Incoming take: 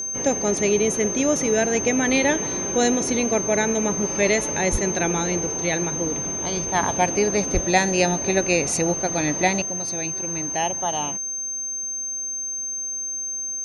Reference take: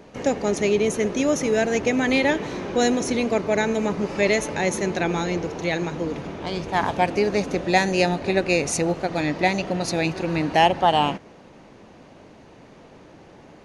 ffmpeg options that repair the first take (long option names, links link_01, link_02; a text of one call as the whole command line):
ffmpeg -i in.wav -filter_complex "[0:a]bandreject=frequency=6300:width=30,asplit=3[link_01][link_02][link_03];[link_01]afade=type=out:start_time=4.71:duration=0.02[link_04];[link_02]highpass=frequency=140:width=0.5412,highpass=frequency=140:width=1.3066,afade=type=in:start_time=4.71:duration=0.02,afade=type=out:start_time=4.83:duration=0.02[link_05];[link_03]afade=type=in:start_time=4.83:duration=0.02[link_06];[link_04][link_05][link_06]amix=inputs=3:normalize=0,asplit=3[link_07][link_08][link_09];[link_07]afade=type=out:start_time=7.53:duration=0.02[link_10];[link_08]highpass=frequency=140:width=0.5412,highpass=frequency=140:width=1.3066,afade=type=in:start_time=7.53:duration=0.02,afade=type=out:start_time=7.65:duration=0.02[link_11];[link_09]afade=type=in:start_time=7.65:duration=0.02[link_12];[link_10][link_11][link_12]amix=inputs=3:normalize=0,asetnsamples=nb_out_samples=441:pad=0,asendcmd='9.62 volume volume 8.5dB',volume=0dB" out.wav